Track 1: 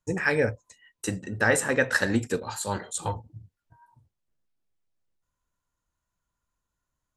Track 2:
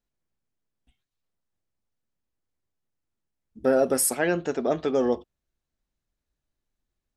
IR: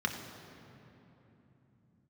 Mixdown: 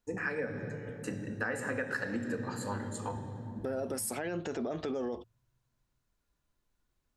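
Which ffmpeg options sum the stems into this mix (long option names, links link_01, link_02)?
-filter_complex "[0:a]volume=-9.5dB,asplit=2[link_01][link_02];[link_02]volume=-6dB[link_03];[1:a]acompressor=threshold=-26dB:ratio=6,alimiter=level_in=4dB:limit=-24dB:level=0:latency=1:release=25,volume=-4dB,volume=3dB[link_04];[2:a]atrim=start_sample=2205[link_05];[link_03][link_05]afir=irnorm=-1:irlink=0[link_06];[link_01][link_04][link_06]amix=inputs=3:normalize=0,acompressor=threshold=-31dB:ratio=6"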